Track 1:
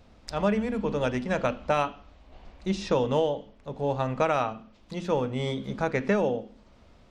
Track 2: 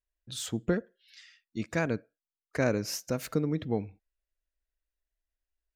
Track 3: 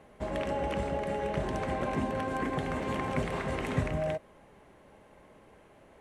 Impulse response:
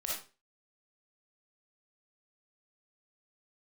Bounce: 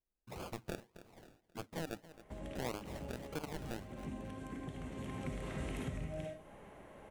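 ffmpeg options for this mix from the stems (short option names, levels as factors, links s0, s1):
-filter_complex "[1:a]flanger=delay=0.8:depth=5:regen=-73:speed=0.92:shape=triangular,acrusher=samples=33:mix=1:aa=0.000001:lfo=1:lforange=19.8:lforate=1.7,aeval=exprs='0.106*(cos(1*acos(clip(val(0)/0.106,-1,1)))-cos(1*PI/2))+0.0299*(cos(7*acos(clip(val(0)/0.106,-1,1)))-cos(7*PI/2))':c=same,volume=0.944,asplit=2[s0][s1];[s1]volume=0.075[s2];[2:a]equalizer=f=4700:w=2.2:g=-6,acrossover=split=320|3000[s3][s4][s5];[s4]acompressor=threshold=0.00398:ratio=3[s6];[s3][s6][s5]amix=inputs=3:normalize=0,adelay=2100,volume=0.841,afade=t=in:st=4.93:d=0.55:silence=0.354813,asplit=2[s7][s8];[s8]volume=0.531[s9];[s7]acompressor=threshold=0.00631:ratio=6,volume=1[s10];[3:a]atrim=start_sample=2205[s11];[s9][s11]afir=irnorm=-1:irlink=0[s12];[s2]aecho=0:1:267|534|801|1068|1335:1|0.34|0.116|0.0393|0.0134[s13];[s0][s10][s12][s13]amix=inputs=4:normalize=0,alimiter=level_in=2.11:limit=0.0631:level=0:latency=1:release=287,volume=0.473"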